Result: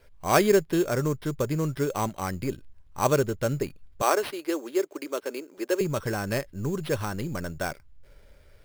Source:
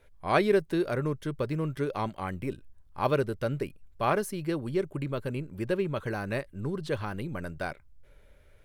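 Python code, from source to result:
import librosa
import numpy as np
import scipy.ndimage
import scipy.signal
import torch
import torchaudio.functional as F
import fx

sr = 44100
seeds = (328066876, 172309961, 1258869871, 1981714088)

y = fx.steep_highpass(x, sr, hz=300.0, slope=36, at=(4.02, 5.81))
y = fx.sample_hold(y, sr, seeds[0], rate_hz=7000.0, jitter_pct=0)
y = y * 10.0 ** (3.5 / 20.0)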